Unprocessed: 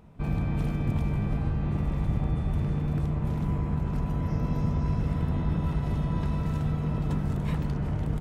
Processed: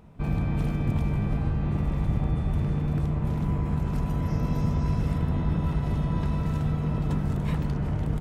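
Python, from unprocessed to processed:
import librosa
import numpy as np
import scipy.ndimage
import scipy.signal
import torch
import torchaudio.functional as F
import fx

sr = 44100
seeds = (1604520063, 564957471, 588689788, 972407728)

y = fx.high_shelf(x, sr, hz=4400.0, db=6.5, at=(3.65, 5.18))
y = F.gain(torch.from_numpy(y), 1.5).numpy()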